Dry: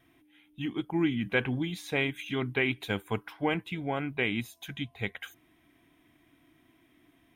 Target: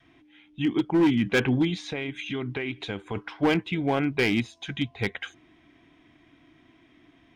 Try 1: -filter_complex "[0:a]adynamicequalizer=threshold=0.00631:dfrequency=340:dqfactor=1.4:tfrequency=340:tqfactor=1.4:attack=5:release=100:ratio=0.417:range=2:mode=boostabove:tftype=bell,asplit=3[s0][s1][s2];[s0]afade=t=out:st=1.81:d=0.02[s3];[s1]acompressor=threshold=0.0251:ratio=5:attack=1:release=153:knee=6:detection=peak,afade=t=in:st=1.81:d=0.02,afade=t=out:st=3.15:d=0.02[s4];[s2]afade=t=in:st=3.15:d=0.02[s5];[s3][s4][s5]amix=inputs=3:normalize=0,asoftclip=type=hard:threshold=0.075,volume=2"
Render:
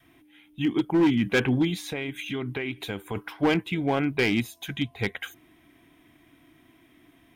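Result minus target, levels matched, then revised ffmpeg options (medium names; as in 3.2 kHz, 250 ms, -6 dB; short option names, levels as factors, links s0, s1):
8 kHz band +3.0 dB
-filter_complex "[0:a]adynamicequalizer=threshold=0.00631:dfrequency=340:dqfactor=1.4:tfrequency=340:tqfactor=1.4:attack=5:release=100:ratio=0.417:range=2:mode=boostabove:tftype=bell,lowpass=f=6300:w=0.5412,lowpass=f=6300:w=1.3066,asplit=3[s0][s1][s2];[s0]afade=t=out:st=1.81:d=0.02[s3];[s1]acompressor=threshold=0.0251:ratio=5:attack=1:release=153:knee=6:detection=peak,afade=t=in:st=1.81:d=0.02,afade=t=out:st=3.15:d=0.02[s4];[s2]afade=t=in:st=3.15:d=0.02[s5];[s3][s4][s5]amix=inputs=3:normalize=0,asoftclip=type=hard:threshold=0.075,volume=2"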